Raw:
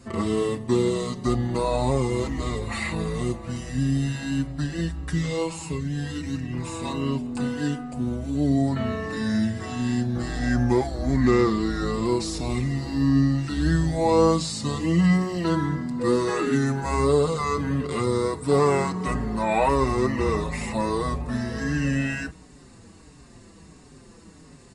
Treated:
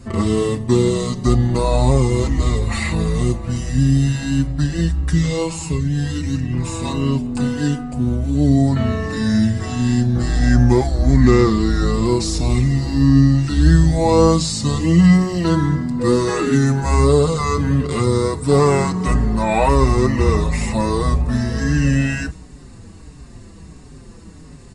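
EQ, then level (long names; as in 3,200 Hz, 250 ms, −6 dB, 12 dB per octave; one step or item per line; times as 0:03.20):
dynamic equaliser 6,300 Hz, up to +5 dB, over −51 dBFS, Q 1
low-shelf EQ 130 Hz +12 dB
+4.0 dB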